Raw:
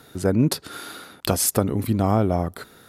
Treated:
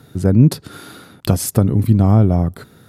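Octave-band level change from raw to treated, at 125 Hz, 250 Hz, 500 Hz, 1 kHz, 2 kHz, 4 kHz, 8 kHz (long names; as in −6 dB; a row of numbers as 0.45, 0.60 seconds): +11.0, +7.0, +1.5, −0.5, −1.5, −2.0, −2.0 decibels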